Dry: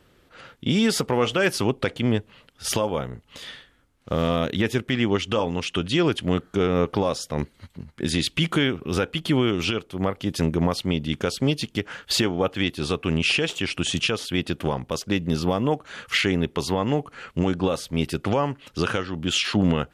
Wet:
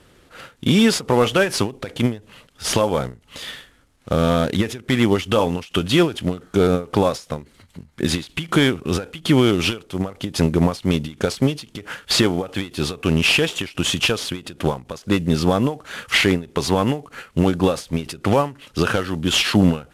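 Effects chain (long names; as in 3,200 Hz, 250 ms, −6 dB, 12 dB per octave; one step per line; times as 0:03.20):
variable-slope delta modulation 64 kbit/s
every ending faded ahead of time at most 190 dB per second
level +6 dB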